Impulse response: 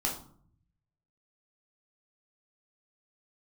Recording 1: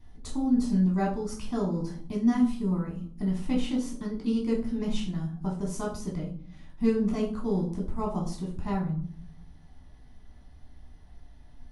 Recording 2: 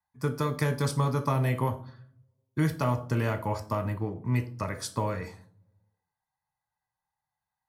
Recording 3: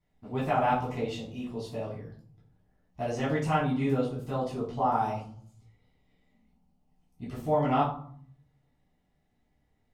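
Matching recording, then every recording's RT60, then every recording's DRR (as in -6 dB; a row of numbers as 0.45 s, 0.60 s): 1; 0.55 s, 0.55 s, 0.55 s; -3.0 dB, 7.0 dB, -8.0 dB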